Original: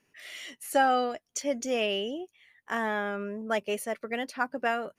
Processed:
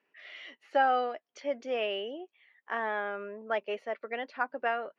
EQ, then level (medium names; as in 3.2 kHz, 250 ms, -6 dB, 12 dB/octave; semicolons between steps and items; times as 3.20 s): band-pass 420–5800 Hz; distance through air 280 m; 0.0 dB